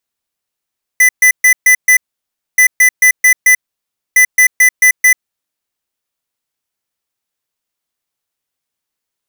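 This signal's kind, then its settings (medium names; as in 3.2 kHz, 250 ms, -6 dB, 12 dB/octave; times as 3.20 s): beep pattern square 2 kHz, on 0.09 s, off 0.13 s, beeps 5, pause 0.61 s, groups 3, -6.5 dBFS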